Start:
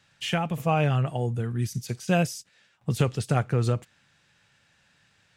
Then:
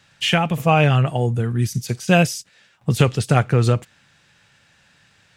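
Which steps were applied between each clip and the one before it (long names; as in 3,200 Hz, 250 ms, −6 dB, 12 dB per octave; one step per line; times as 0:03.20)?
dynamic equaliser 2,800 Hz, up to +4 dB, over −40 dBFS, Q 0.84
level +7.5 dB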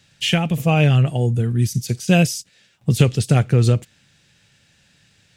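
parametric band 1,100 Hz −11 dB 1.8 octaves
level +2.5 dB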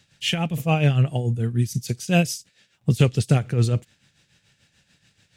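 amplitude tremolo 6.9 Hz, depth 64%
level −1.5 dB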